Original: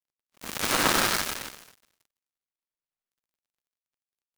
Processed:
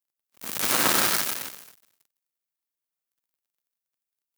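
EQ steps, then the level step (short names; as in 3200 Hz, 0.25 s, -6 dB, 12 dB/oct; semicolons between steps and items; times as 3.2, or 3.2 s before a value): HPF 100 Hz 12 dB/oct; high shelf 9700 Hz +11.5 dB; -1.0 dB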